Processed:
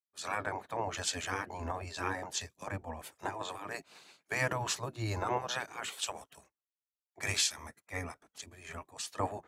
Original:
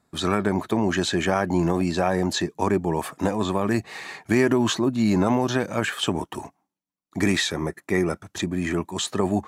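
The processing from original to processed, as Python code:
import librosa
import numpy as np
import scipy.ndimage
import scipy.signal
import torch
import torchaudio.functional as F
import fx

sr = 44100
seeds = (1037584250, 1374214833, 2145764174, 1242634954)

y = fx.spec_gate(x, sr, threshold_db=-10, keep='weak')
y = fx.band_widen(y, sr, depth_pct=100)
y = F.gain(torch.from_numpy(y), -6.5).numpy()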